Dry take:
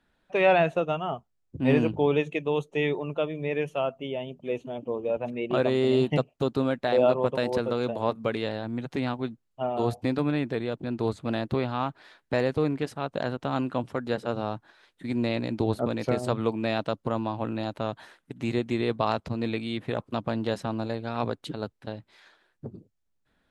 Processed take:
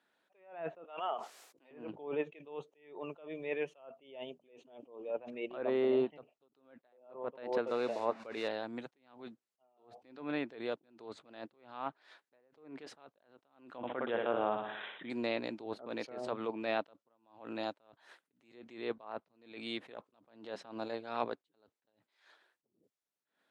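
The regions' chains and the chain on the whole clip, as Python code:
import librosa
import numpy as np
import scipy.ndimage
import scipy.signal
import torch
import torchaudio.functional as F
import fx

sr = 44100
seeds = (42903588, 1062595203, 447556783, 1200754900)

y = fx.chain(x, sr, fx.highpass(hz=520.0, slope=12),
    fx.sustainer(db_per_s=72.0), at=(0.84, 1.71))
y = fx.chain(y, sr, fx.delta_mod(bps=64000, step_db=-37.0),
    fx.notch(hz=3200.0, q=8.1), at=(7.67, 8.48))
y = fx.chain(y, sr, fx.room_flutter(wall_m=10.5, rt60_s=0.47),
    fx.resample_bad(factor=6, down='none', up='filtered'),
    fx.env_flatten(amount_pct=50), at=(13.77, 15.1))
y = scipy.signal.sosfilt(scipy.signal.butter(2, 360.0, 'highpass', fs=sr, output='sos'), y)
y = fx.env_lowpass_down(y, sr, base_hz=1700.0, full_db=-22.0)
y = fx.attack_slew(y, sr, db_per_s=110.0)
y = y * 10.0 ** (-3.5 / 20.0)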